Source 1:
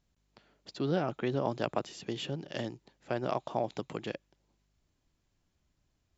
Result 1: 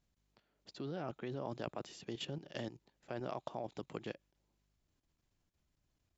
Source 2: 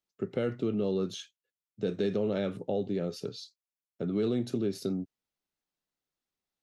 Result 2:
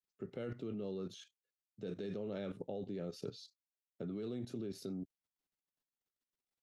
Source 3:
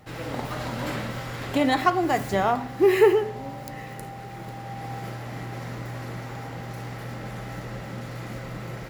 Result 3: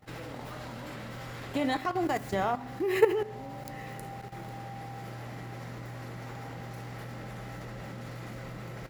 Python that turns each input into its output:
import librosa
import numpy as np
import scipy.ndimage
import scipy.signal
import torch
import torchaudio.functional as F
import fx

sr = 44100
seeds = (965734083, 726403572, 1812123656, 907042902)

y = fx.level_steps(x, sr, step_db=13)
y = y * 10.0 ** (-2.0 / 20.0)